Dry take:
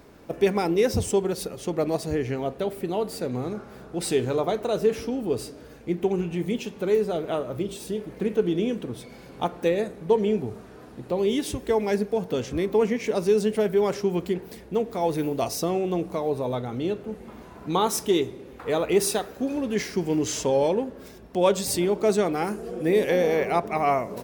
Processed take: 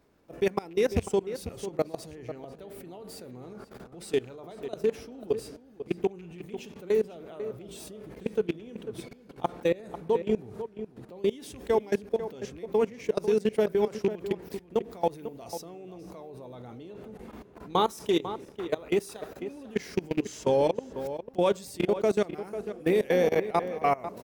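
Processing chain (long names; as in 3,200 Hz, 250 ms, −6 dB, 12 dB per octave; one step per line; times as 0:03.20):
loose part that buzzes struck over −25 dBFS, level −24 dBFS
output level in coarse steps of 22 dB
slap from a distant wall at 85 metres, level −11 dB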